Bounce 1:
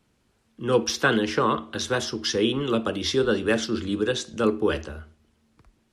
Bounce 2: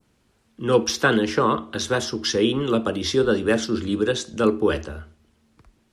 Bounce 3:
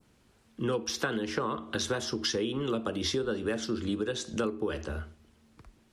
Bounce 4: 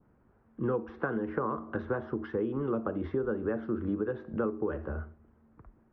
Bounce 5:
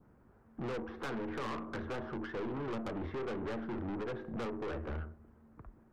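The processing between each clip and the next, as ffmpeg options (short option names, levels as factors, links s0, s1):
-af "adynamicequalizer=threshold=0.01:dfrequency=2800:dqfactor=0.79:tfrequency=2800:tqfactor=0.79:attack=5:release=100:ratio=0.375:range=2:mode=cutabove:tftype=bell,volume=1.41"
-af "acompressor=threshold=0.0447:ratio=12"
-af "lowpass=f=1500:w=0.5412,lowpass=f=1500:w=1.3066"
-af "aeval=exprs='(tanh(89.1*val(0)+0.35)-tanh(0.35))/89.1':c=same,volume=1.41"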